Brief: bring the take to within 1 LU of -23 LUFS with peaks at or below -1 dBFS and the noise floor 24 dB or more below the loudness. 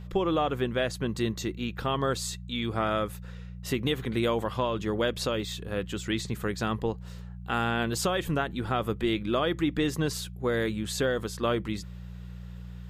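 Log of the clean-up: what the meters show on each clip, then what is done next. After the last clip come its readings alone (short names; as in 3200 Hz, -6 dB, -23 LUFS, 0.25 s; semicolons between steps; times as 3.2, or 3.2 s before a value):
hum 60 Hz; harmonics up to 180 Hz; hum level -39 dBFS; loudness -29.5 LUFS; peak -15.0 dBFS; loudness target -23.0 LUFS
-> de-hum 60 Hz, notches 3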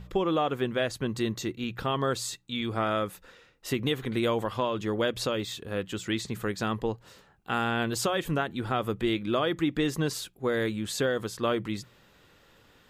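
hum none; loudness -30.0 LUFS; peak -15.5 dBFS; loudness target -23.0 LUFS
-> gain +7 dB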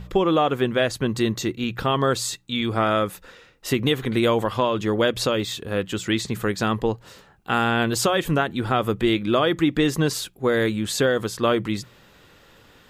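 loudness -23.0 LUFS; peak -8.5 dBFS; noise floor -53 dBFS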